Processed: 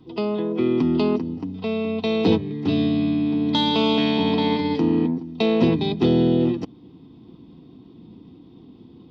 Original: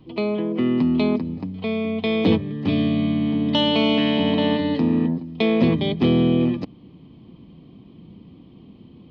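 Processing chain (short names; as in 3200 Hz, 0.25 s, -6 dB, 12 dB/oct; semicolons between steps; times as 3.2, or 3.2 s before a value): formant shift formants +2 st; notch comb 580 Hz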